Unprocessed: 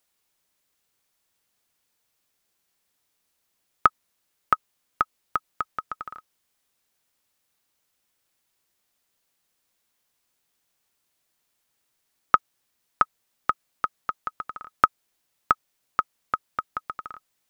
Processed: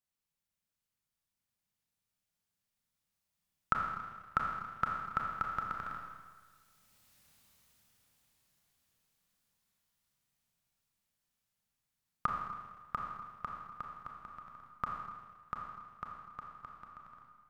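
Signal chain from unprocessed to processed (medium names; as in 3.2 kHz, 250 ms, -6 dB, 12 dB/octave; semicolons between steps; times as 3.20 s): Doppler pass-by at 7.19 s, 12 m/s, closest 5.4 m; resonant low shelf 240 Hz +8.5 dB, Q 1.5; Schroeder reverb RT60 1.5 s, combs from 27 ms, DRR 0 dB; trim +5.5 dB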